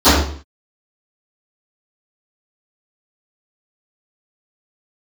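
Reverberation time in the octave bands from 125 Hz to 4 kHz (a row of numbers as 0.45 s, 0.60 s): 0.50 s, 0.55 s, 0.50 s, 0.50 s, 0.45 s, 0.45 s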